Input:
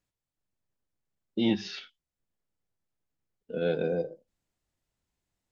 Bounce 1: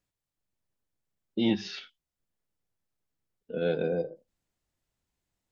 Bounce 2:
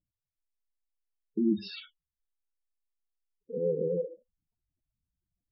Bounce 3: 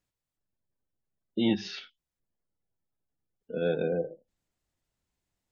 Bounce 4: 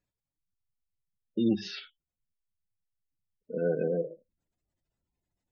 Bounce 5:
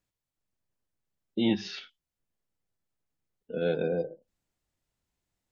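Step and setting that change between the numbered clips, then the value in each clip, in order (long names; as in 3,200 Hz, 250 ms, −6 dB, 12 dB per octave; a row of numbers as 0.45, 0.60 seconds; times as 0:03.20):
gate on every frequency bin, under each frame's peak: −60, −10, −35, −20, −45 decibels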